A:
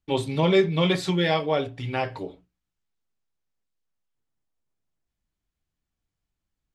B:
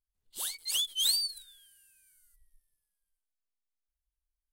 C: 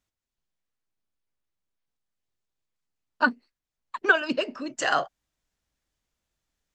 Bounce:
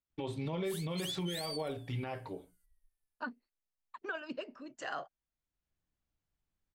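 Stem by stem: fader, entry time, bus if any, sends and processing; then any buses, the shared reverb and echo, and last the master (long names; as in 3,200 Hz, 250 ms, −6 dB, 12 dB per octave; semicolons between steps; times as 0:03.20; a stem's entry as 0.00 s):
−4.0 dB, 0.10 s, no send, downward compressor 4 to 1, threshold −28 dBFS, peak gain reduction 11.5 dB; automatic ducking −17 dB, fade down 1.15 s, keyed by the third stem
−6.0 dB, 0.30 s, no send, no processing
−14.0 dB, 0.00 s, no send, no processing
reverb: not used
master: high-shelf EQ 3,500 Hz −7 dB; brickwall limiter −28 dBFS, peak gain reduction 8.5 dB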